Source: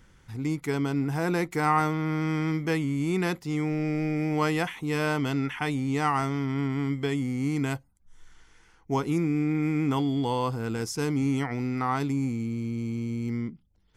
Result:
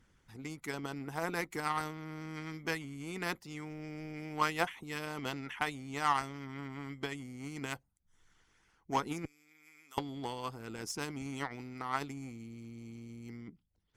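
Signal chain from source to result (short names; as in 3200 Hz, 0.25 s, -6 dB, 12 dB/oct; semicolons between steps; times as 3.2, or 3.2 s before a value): 9.25–9.98 differentiator; harmonic-percussive split harmonic -12 dB; added harmonics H 7 -23 dB, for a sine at -15.5 dBFS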